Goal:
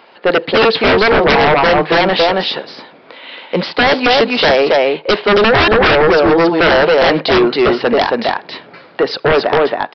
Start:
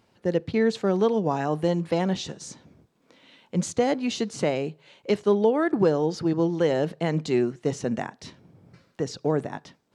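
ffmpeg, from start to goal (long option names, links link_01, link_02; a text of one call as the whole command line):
ffmpeg -i in.wav -af "highpass=550,lowpass=3600,aecho=1:1:274:0.668,aresample=11025,aeval=exprs='0.355*sin(PI/2*7.94*val(0)/0.355)':channel_layout=same,aresample=44100,volume=2.5dB" out.wav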